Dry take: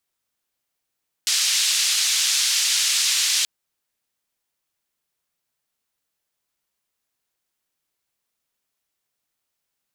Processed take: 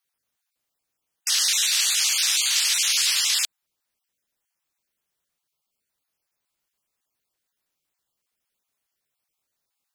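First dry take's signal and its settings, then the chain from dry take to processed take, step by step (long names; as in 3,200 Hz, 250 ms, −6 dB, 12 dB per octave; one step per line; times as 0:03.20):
band-limited noise 3,300–6,000 Hz, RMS −20.5 dBFS 2.18 s
time-frequency cells dropped at random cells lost 22%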